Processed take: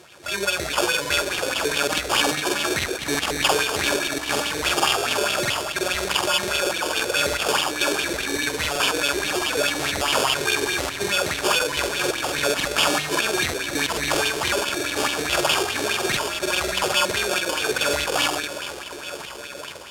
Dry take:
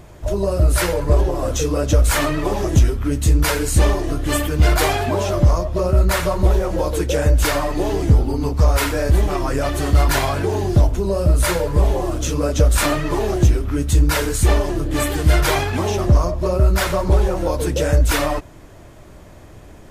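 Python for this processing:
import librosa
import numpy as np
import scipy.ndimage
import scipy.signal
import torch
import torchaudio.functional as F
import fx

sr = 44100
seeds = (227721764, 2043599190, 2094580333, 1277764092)

p1 = scipy.signal.sosfilt(scipy.signal.butter(4, 81.0, 'highpass', fs=sr, output='sos'), x)
p2 = fx.peak_eq(p1, sr, hz=770.0, db=-7.0, octaves=1.1)
p3 = fx.doubler(p2, sr, ms=14.0, db=-6.0)
p4 = p3 + fx.echo_alternate(p3, sr, ms=254, hz=890.0, feedback_pct=85, wet_db=-11.0, dry=0)
p5 = fx.sample_hold(p4, sr, seeds[0], rate_hz=2000.0, jitter_pct=0)
p6 = np.clip(p5, -10.0 ** (-12.5 / 20.0), 10.0 ** (-12.5 / 20.0))
p7 = scipy.signal.sosfilt(scipy.signal.bessel(2, 7300.0, 'lowpass', norm='mag', fs=sr, output='sos'), p6)
p8 = fx.tilt_eq(p7, sr, slope=4.5)
p9 = fx.buffer_crackle(p8, sr, first_s=0.9, period_s=0.11, block=2048, kind='repeat')
p10 = fx.bell_lfo(p9, sr, hz=4.8, low_hz=380.0, high_hz=3200.0, db=12)
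y = p10 * 10.0 ** (-3.5 / 20.0)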